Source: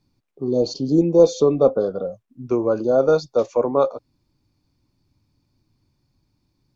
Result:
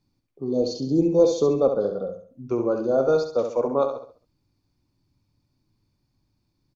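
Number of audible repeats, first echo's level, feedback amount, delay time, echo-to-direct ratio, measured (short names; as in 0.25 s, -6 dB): 4, -7.0 dB, 37%, 68 ms, -6.5 dB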